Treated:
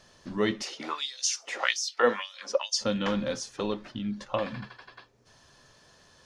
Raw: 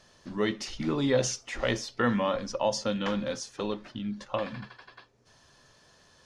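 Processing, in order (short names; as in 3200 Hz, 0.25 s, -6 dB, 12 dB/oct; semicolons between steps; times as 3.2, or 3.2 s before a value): 0.62–2.8 LFO high-pass sine 1 Hz -> 2.9 Hz 420–6000 Hz; gain +1.5 dB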